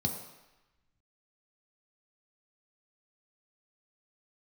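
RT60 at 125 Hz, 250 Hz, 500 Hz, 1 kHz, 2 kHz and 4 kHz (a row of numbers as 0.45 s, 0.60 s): 0.85 s, 0.85 s, 0.95 s, 1.1 s, 1.2 s, 1.0 s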